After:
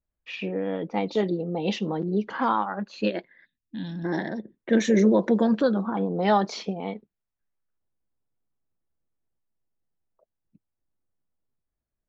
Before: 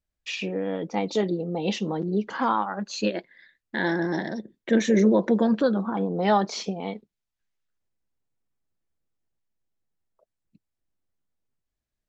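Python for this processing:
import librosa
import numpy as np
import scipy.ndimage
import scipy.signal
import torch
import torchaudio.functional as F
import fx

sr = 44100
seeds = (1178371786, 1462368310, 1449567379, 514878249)

y = fx.spec_box(x, sr, start_s=3.45, length_s=0.6, low_hz=310.0, high_hz=2400.0, gain_db=-22)
y = fx.env_lowpass(y, sr, base_hz=1400.0, full_db=-17.0)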